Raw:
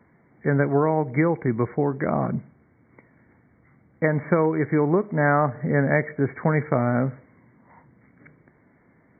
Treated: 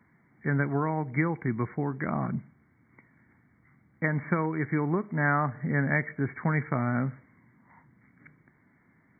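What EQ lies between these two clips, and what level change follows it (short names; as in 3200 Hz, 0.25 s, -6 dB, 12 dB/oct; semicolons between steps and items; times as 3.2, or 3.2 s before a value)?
low shelf 82 Hz -9 dB; bell 520 Hz -12 dB 1.3 oct; -1.0 dB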